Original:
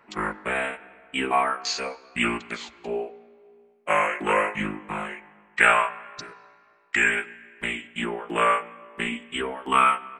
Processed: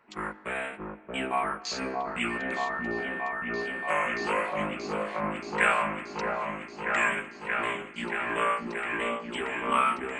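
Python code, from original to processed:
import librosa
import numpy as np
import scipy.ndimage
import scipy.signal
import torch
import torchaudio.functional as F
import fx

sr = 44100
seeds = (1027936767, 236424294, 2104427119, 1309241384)

y = fx.echo_opening(x, sr, ms=629, hz=750, octaves=1, feedback_pct=70, wet_db=0)
y = fx.dmg_tone(y, sr, hz=1800.0, level_db=-27.0, at=(2.3, 4.27), fade=0.02)
y = y * 10.0 ** (-6.5 / 20.0)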